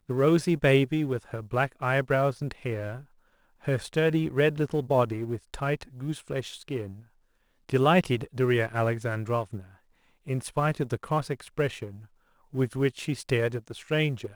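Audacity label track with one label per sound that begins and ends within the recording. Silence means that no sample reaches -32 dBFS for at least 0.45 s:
3.670000	6.910000	sound
7.690000	9.590000	sound
10.280000	11.880000	sound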